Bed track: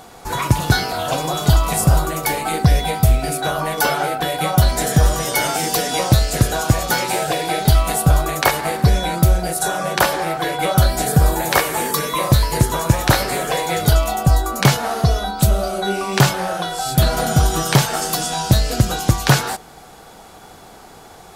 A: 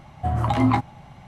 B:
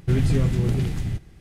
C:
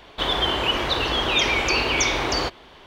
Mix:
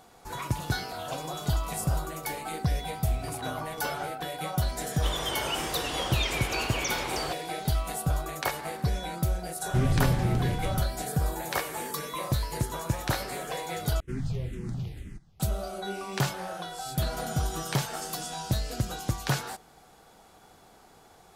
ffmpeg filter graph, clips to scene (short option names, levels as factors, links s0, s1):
-filter_complex "[2:a]asplit=2[s0][s1];[0:a]volume=0.2[s2];[1:a]acompressor=threshold=0.02:ratio=6:attack=3.2:release=140:knee=1:detection=peak[s3];[s1]asplit=2[s4][s5];[s5]afreqshift=-2[s6];[s4][s6]amix=inputs=2:normalize=1[s7];[s2]asplit=2[s8][s9];[s8]atrim=end=14.004[s10];[s7]atrim=end=1.4,asetpts=PTS-STARTPTS,volume=0.335[s11];[s9]atrim=start=15.396[s12];[s3]atrim=end=1.27,asetpts=PTS-STARTPTS,volume=0.596,afade=t=in:d=0.004:c=hsin,afade=t=out:st=1.266:d=0.004:c=hsin,adelay=2840[s13];[3:a]atrim=end=2.86,asetpts=PTS-STARTPTS,volume=0.299,afade=t=in:d=0.004:c=hsin,afade=t=out:st=2.856:d=0.004:c=hsin,adelay=4840[s14];[s0]atrim=end=1.4,asetpts=PTS-STARTPTS,volume=0.596,afade=t=in:d=0.004:c=hsin,afade=t=out:st=1.396:d=0.004:c=hsin,adelay=9660[s15];[s10][s11]acrossfade=d=0.004:c1=hsin:c2=hsin[s16];[s16][s12]acrossfade=d=0.004:c1=hsin:c2=hsin[s17];[s17][s13][s14][s15]amix=inputs=4:normalize=0"